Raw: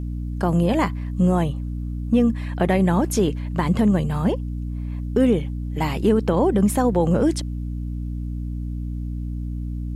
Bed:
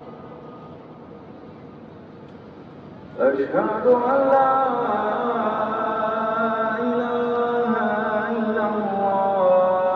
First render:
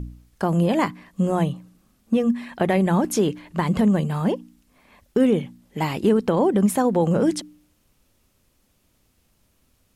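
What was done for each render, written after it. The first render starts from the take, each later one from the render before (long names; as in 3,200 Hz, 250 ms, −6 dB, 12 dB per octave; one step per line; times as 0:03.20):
hum removal 60 Hz, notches 5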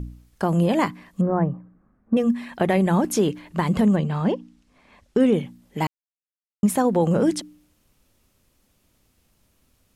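0:01.21–0:02.17: Butterworth low-pass 1,800 Hz
0:03.95–0:05.31: low-pass filter 4,600 Hz → 9,000 Hz
0:05.87–0:06.63: silence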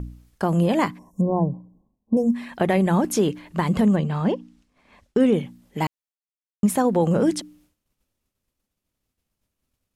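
downward expander −53 dBFS
0:00.98–0:02.33: gain on a spectral selection 1,100–5,300 Hz −30 dB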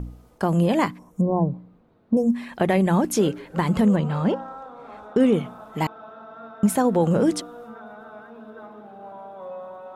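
mix in bed −19.5 dB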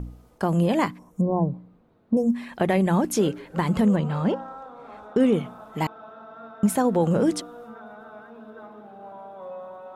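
level −1.5 dB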